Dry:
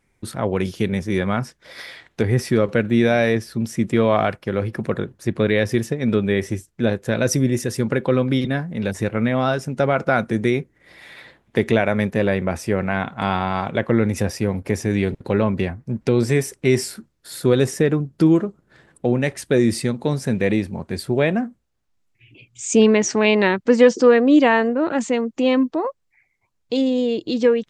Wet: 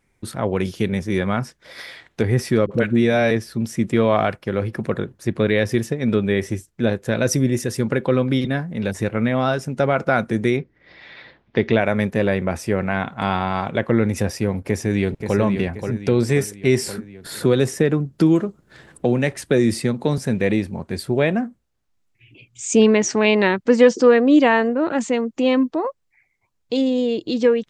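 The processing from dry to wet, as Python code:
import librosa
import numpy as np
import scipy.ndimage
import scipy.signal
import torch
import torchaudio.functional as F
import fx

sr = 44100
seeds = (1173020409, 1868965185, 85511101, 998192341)

y = fx.dispersion(x, sr, late='highs', ms=53.0, hz=480.0, at=(2.66, 3.31))
y = fx.steep_lowpass(y, sr, hz=5300.0, slope=36, at=(10.56, 11.8), fade=0.02)
y = fx.echo_throw(y, sr, start_s=14.67, length_s=0.71, ms=530, feedback_pct=45, wet_db=-7.0)
y = fx.band_squash(y, sr, depth_pct=40, at=(16.86, 20.18))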